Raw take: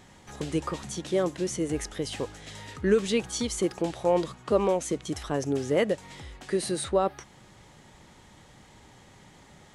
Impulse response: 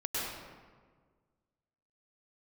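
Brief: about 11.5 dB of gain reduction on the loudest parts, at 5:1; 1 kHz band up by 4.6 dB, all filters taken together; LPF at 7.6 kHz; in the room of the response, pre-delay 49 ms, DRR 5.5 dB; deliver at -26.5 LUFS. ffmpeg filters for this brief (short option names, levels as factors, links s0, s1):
-filter_complex "[0:a]lowpass=7600,equalizer=f=1000:t=o:g=6,acompressor=threshold=0.0355:ratio=5,asplit=2[s0][s1];[1:a]atrim=start_sample=2205,adelay=49[s2];[s1][s2]afir=irnorm=-1:irlink=0,volume=0.266[s3];[s0][s3]amix=inputs=2:normalize=0,volume=2.24"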